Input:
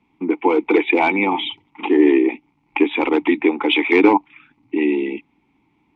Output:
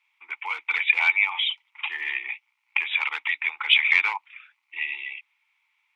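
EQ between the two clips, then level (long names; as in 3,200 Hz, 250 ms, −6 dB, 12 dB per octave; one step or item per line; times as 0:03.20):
high-pass filter 1,400 Hz 24 dB per octave
+1.5 dB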